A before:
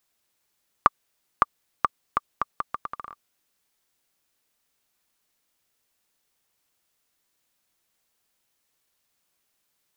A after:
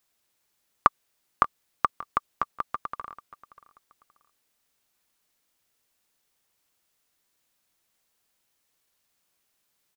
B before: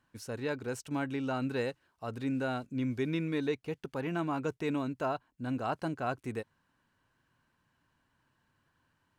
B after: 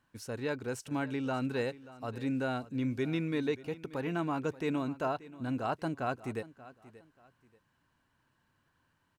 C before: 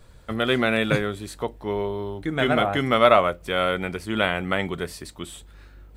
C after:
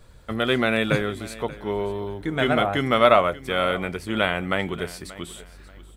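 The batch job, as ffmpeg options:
-af "aecho=1:1:583|1166:0.126|0.0352"

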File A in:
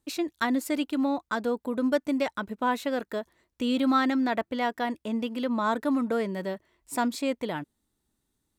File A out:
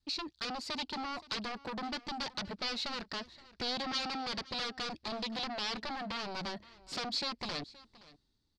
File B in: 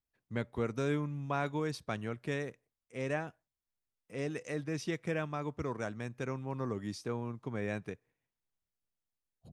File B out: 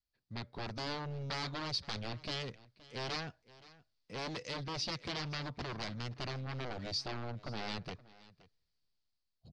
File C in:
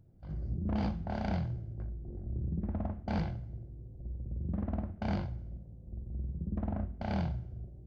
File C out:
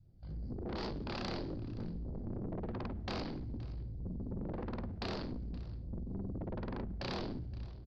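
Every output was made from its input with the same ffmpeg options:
-filter_complex "[0:a]dynaudnorm=f=200:g=7:m=8.5dB,lowshelf=f=140:g=8,acompressor=threshold=-20dB:ratio=6,adynamicequalizer=threshold=0.0126:dfrequency=420:dqfactor=1.1:tfrequency=420:tqfactor=1.1:attack=5:release=100:ratio=0.375:range=1.5:mode=cutabove:tftype=bell,aeval=exprs='0.282*(cos(1*acos(clip(val(0)/0.282,-1,1)))-cos(1*PI/2))+0.0891*(cos(7*acos(clip(val(0)/0.282,-1,1)))-cos(7*PI/2))':c=same,asoftclip=type=tanh:threshold=-26.5dB,lowpass=f=4.6k:t=q:w=5.1,asplit=2[a][b];[b]aecho=0:1:522:0.1[c];[a][c]amix=inputs=2:normalize=0,volume=-8dB"

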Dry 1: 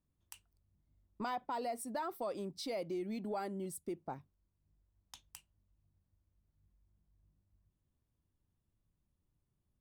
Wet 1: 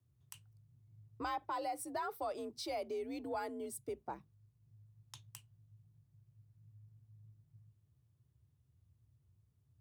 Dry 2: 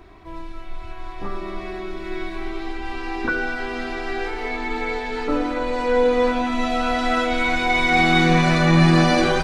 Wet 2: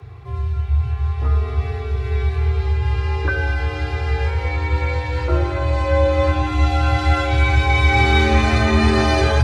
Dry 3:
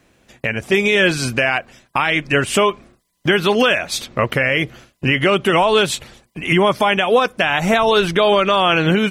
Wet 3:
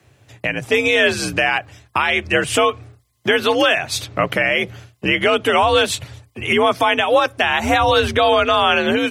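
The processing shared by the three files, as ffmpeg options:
-af "afreqshift=58,lowshelf=f=150:t=q:w=3:g=8"

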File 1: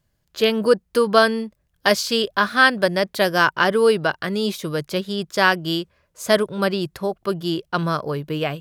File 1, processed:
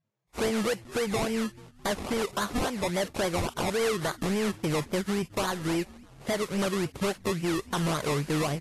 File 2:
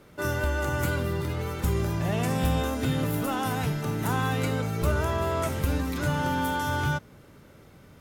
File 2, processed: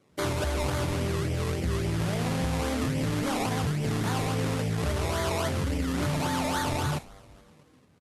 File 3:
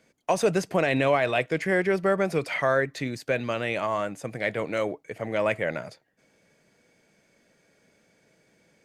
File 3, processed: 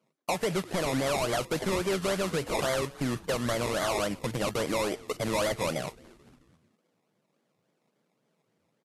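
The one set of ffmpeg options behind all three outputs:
-filter_complex "[0:a]highpass=59,afwtdn=0.0282,lowpass=f=3.1k:p=1,asplit=2[a][b];[b]alimiter=limit=-10.5dB:level=0:latency=1:release=268,volume=1dB[c];[a][c]amix=inputs=2:normalize=0,acompressor=threshold=-23dB:ratio=6,asplit=2[d][e];[e]asplit=4[f][g][h][i];[f]adelay=217,afreqshift=-100,volume=-24dB[j];[g]adelay=434,afreqshift=-200,volume=-28.2dB[k];[h]adelay=651,afreqshift=-300,volume=-32.3dB[l];[i]adelay=868,afreqshift=-400,volume=-36.5dB[m];[j][k][l][m]amix=inputs=4:normalize=0[n];[d][n]amix=inputs=2:normalize=0,acrusher=samples=23:mix=1:aa=0.000001:lfo=1:lforange=13.8:lforate=3.6,asoftclip=type=hard:threshold=-24dB" -ar 32000 -c:a libvorbis -b:a 32k

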